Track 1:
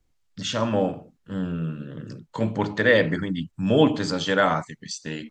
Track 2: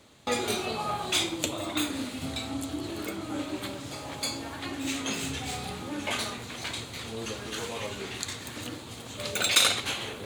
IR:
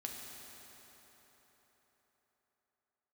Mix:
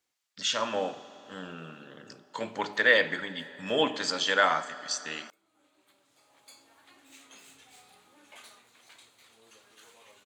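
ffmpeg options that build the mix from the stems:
-filter_complex "[0:a]lowshelf=f=130:g=-9,volume=1,asplit=3[s0][s1][s2];[s1]volume=0.335[s3];[1:a]equalizer=f=4000:w=0.54:g=-5,adelay=2250,volume=0.178[s4];[s2]apad=whole_len=551312[s5];[s4][s5]sidechaincompress=threshold=0.00794:ratio=4:attack=16:release=1260[s6];[2:a]atrim=start_sample=2205[s7];[s3][s7]afir=irnorm=-1:irlink=0[s8];[s0][s6][s8]amix=inputs=3:normalize=0,highpass=f=1200:p=1"

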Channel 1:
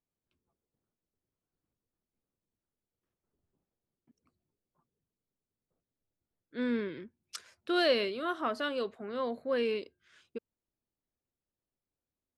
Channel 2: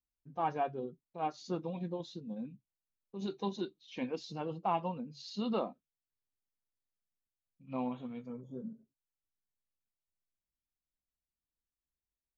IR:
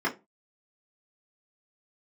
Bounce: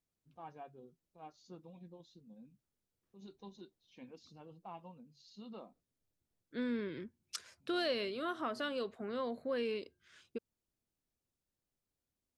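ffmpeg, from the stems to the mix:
-filter_complex "[0:a]highshelf=f=9100:g=-5.5,volume=0.944[s0];[1:a]volume=0.141[s1];[s0][s1]amix=inputs=2:normalize=0,bass=f=250:g=3,treble=f=4000:g=5,acompressor=threshold=0.0126:ratio=2"

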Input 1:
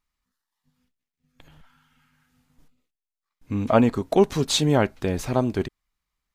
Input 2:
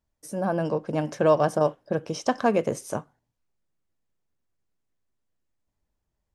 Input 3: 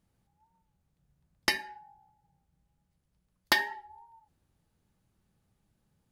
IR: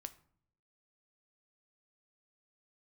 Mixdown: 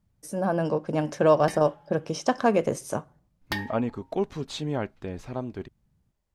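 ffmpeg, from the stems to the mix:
-filter_complex "[0:a]dynaudnorm=f=210:g=13:m=2.24,aemphasis=mode=reproduction:type=50kf,volume=0.266[s0];[1:a]volume=0.841,asplit=3[s1][s2][s3];[s2]volume=0.447[s4];[2:a]bass=f=250:g=13,treble=f=4000:g=-3,volume=0.501[s5];[s3]apad=whole_len=269662[s6];[s5][s6]sidechaincompress=threshold=0.0501:ratio=8:attack=10:release=201[s7];[3:a]atrim=start_sample=2205[s8];[s4][s8]afir=irnorm=-1:irlink=0[s9];[s0][s1][s7][s9]amix=inputs=4:normalize=0"

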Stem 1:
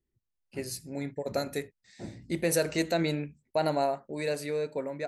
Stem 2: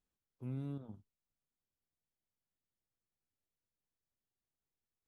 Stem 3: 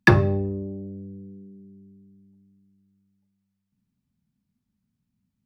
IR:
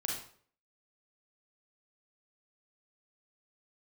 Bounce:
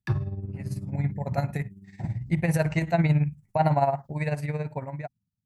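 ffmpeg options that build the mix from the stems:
-filter_complex "[0:a]firequalizer=gain_entry='entry(140,0);entry(250,-7);entry(370,-9);entry(790,4);entry(1300,-6);entry(2000,1);entry(3700,-17)':delay=0.05:min_phase=1,volume=0.708[s0];[1:a]acompressor=threshold=0.00398:ratio=6,asplit=2[s1][s2];[s2]afreqshift=-0.64[s3];[s1][s3]amix=inputs=2:normalize=1,volume=1.06[s4];[2:a]volume=0.251[s5];[s0][s4][s5]amix=inputs=3:normalize=0,equalizer=f=125:t=o:w=1:g=11,equalizer=f=250:t=o:w=1:g=-4,equalizer=f=500:t=o:w=1:g=-8,equalizer=f=2000:t=o:w=1:g=-5,dynaudnorm=f=190:g=7:m=5.31,tremolo=f=18:d=0.65"

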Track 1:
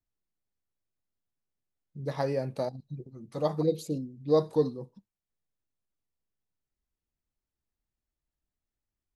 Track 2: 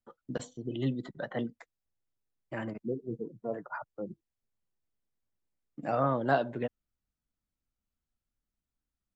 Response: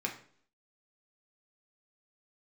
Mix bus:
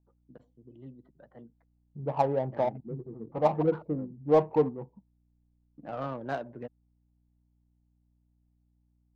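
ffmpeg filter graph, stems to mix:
-filter_complex "[0:a]equalizer=f=520:t=o:w=0.36:g=-2.5,aeval=exprs='val(0)+0.000398*(sin(2*PI*60*n/s)+sin(2*PI*2*60*n/s)/2+sin(2*PI*3*60*n/s)/3+sin(2*PI*4*60*n/s)/4+sin(2*PI*5*60*n/s)/5)':c=same,lowpass=f=860:t=q:w=3.4,volume=0.944[s0];[1:a]volume=0.447,afade=t=in:st=2.15:d=0.6:silence=0.354813[s1];[s0][s1]amix=inputs=2:normalize=0,highshelf=f=3300:g=8,adynamicsmooth=sensitivity=3:basefreq=1000"

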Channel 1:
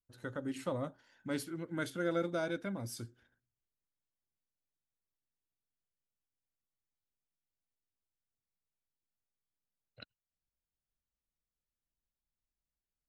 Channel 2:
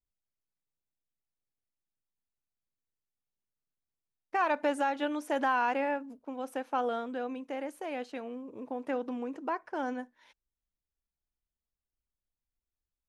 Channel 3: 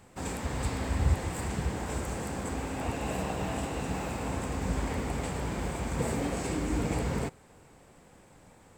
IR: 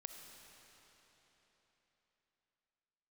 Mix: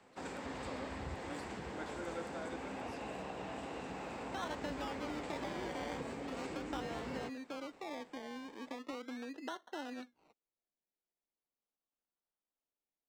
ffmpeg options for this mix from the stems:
-filter_complex "[0:a]volume=0.299[s0];[1:a]equalizer=f=240:w=1.5:g=5.5,acompressor=threshold=0.0224:ratio=6,acrusher=samples=26:mix=1:aa=0.000001:lfo=1:lforange=15.6:lforate=0.39,volume=0.501[s1];[2:a]acrossover=split=140[s2][s3];[s3]acompressor=threshold=0.0178:ratio=6[s4];[s2][s4]amix=inputs=2:normalize=0,volume=0.596[s5];[s0][s1][s5]amix=inputs=3:normalize=0,acrossover=split=210 6000:gain=0.141 1 0.141[s6][s7][s8];[s6][s7][s8]amix=inputs=3:normalize=0"

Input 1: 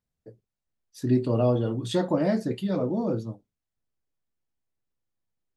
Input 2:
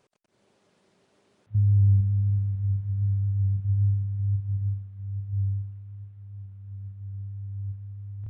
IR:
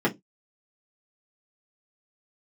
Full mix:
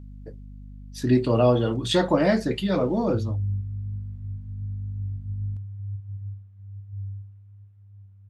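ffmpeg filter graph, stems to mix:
-filter_complex "[0:a]equalizer=f=2400:w=0.4:g=8.5,aeval=exprs='val(0)+0.00794*(sin(2*PI*50*n/s)+sin(2*PI*2*50*n/s)/2+sin(2*PI*3*50*n/s)/3+sin(2*PI*4*50*n/s)/4+sin(2*PI*5*50*n/s)/5)':c=same,volume=1.26[s0];[1:a]acompressor=mode=upward:threshold=0.00501:ratio=2.5,adelay=1600,volume=0.422[s1];[s0][s1]amix=inputs=2:normalize=0"

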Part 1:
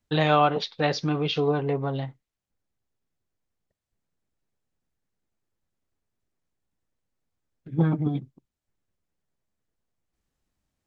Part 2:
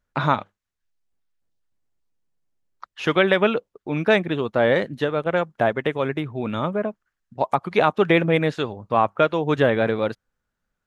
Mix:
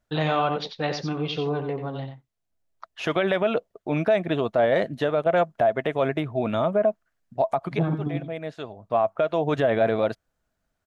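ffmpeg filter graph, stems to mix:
-filter_complex "[0:a]volume=0.708,asplit=3[s0][s1][s2];[s1]volume=0.398[s3];[1:a]equalizer=f=660:t=o:w=0.24:g=14.5,alimiter=limit=0.531:level=0:latency=1:release=177,volume=0.944[s4];[s2]apad=whole_len=479108[s5];[s4][s5]sidechaincompress=threshold=0.00891:ratio=8:attack=32:release=1080[s6];[s3]aecho=0:1:90:1[s7];[s0][s6][s7]amix=inputs=3:normalize=0,alimiter=limit=0.237:level=0:latency=1:release=54"

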